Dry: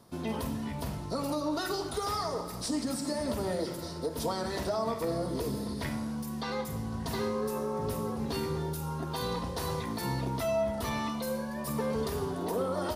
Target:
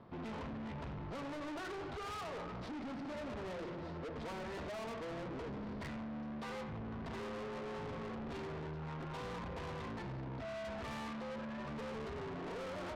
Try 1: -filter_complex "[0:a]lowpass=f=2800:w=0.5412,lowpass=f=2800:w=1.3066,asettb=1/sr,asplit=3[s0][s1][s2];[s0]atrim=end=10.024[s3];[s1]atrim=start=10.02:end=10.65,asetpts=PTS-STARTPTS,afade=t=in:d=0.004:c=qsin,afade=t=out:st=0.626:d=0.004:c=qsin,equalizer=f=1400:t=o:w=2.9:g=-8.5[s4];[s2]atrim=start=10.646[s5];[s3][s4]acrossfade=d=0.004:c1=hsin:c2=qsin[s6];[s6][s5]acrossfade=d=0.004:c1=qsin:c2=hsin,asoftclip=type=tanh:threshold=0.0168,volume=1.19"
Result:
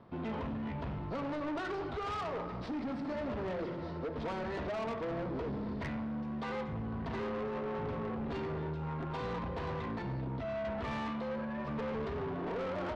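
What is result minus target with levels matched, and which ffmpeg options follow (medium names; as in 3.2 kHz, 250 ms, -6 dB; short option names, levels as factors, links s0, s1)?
saturation: distortion -4 dB
-filter_complex "[0:a]lowpass=f=2800:w=0.5412,lowpass=f=2800:w=1.3066,asettb=1/sr,asplit=3[s0][s1][s2];[s0]atrim=end=10.024[s3];[s1]atrim=start=10.02:end=10.65,asetpts=PTS-STARTPTS,afade=t=in:d=0.004:c=qsin,afade=t=out:st=0.626:d=0.004:c=qsin,equalizer=f=1400:t=o:w=2.9:g=-8.5[s4];[s2]atrim=start=10.646[s5];[s3][s4]acrossfade=d=0.004:c1=hsin:c2=qsin[s6];[s6][s5]acrossfade=d=0.004:c1=qsin:c2=hsin,asoftclip=type=tanh:threshold=0.00668,volume=1.19"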